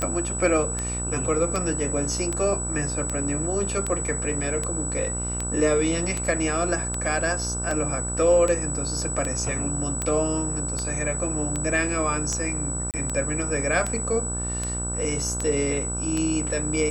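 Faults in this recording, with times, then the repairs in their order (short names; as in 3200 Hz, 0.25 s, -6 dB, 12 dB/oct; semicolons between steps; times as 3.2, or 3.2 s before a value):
buzz 60 Hz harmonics 26 -31 dBFS
tick 78 rpm -13 dBFS
tone 7900 Hz -29 dBFS
12.91–12.94 gap 28 ms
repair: de-click; de-hum 60 Hz, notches 26; notch 7900 Hz, Q 30; interpolate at 12.91, 28 ms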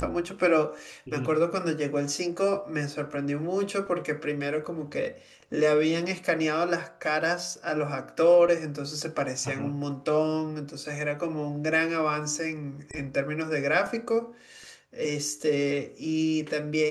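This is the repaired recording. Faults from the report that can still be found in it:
none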